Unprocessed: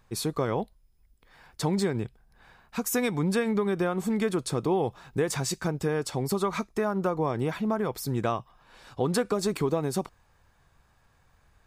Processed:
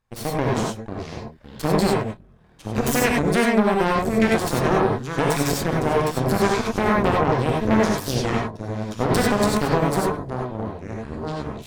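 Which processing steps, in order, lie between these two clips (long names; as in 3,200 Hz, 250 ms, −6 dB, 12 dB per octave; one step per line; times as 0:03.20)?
delay with pitch and tempo change per echo 335 ms, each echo −6 semitones, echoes 3, each echo −6 dB
harmonic generator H 4 −7 dB, 7 −19 dB, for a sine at −12.5 dBFS
reverb whose tail is shaped and stops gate 120 ms rising, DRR −2 dB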